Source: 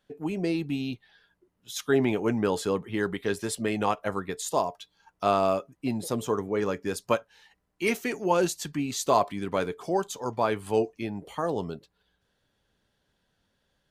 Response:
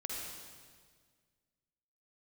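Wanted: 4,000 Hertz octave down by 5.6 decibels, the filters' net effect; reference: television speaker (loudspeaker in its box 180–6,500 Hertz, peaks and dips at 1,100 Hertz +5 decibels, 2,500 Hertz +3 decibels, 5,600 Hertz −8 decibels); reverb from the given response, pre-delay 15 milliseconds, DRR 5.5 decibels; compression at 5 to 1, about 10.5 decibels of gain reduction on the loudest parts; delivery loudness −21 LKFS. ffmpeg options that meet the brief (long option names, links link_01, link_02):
-filter_complex "[0:a]equalizer=frequency=4000:width_type=o:gain=-6.5,acompressor=threshold=-30dB:ratio=5,asplit=2[link_01][link_02];[1:a]atrim=start_sample=2205,adelay=15[link_03];[link_02][link_03]afir=irnorm=-1:irlink=0,volume=-6.5dB[link_04];[link_01][link_04]amix=inputs=2:normalize=0,highpass=frequency=180:width=0.5412,highpass=frequency=180:width=1.3066,equalizer=frequency=1100:width_type=q:width=4:gain=5,equalizer=frequency=2500:width_type=q:width=4:gain=3,equalizer=frequency=5600:width_type=q:width=4:gain=-8,lowpass=frequency=6500:width=0.5412,lowpass=frequency=6500:width=1.3066,volume=13.5dB"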